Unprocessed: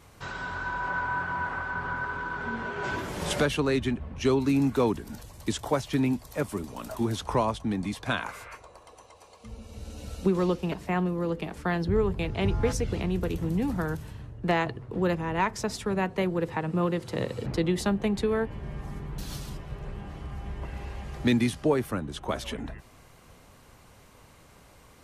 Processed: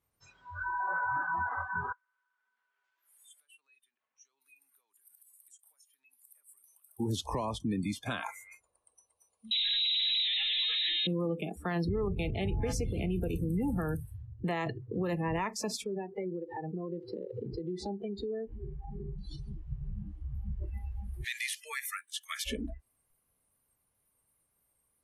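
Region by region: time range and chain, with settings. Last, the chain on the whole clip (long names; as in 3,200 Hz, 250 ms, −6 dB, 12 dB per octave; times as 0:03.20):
0:01.92–0:07.00: high-pass filter 1,400 Hz + downward compressor 5 to 1, threshold −51 dBFS
0:09.51–0:11.07: sign of each sample alone + voice inversion scrambler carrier 3,900 Hz
0:15.84–0:19.58: low-pass filter 4,400 Hz + downward compressor 16 to 1, threshold −34 dBFS + hollow resonant body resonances 390/810 Hz, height 7 dB, ringing for 35 ms
0:21.24–0:22.46: high-pass with resonance 1,900 Hz, resonance Q 2.2 + high-shelf EQ 7,100 Hz +10 dB
whole clip: noise reduction from a noise print of the clip's start 29 dB; brickwall limiter −24.5 dBFS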